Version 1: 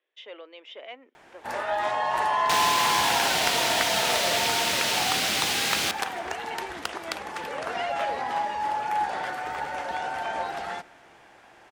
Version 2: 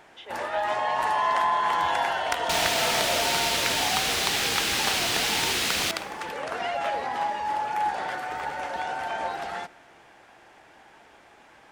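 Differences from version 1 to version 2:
first sound: entry -1.15 s; second sound: remove HPF 96 Hz

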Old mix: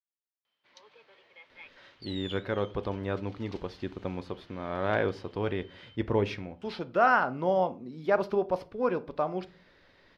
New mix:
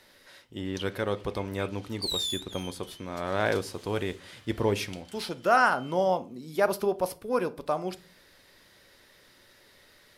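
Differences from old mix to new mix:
speech: entry -1.50 s; second sound +6.0 dB; master: remove air absorption 240 m

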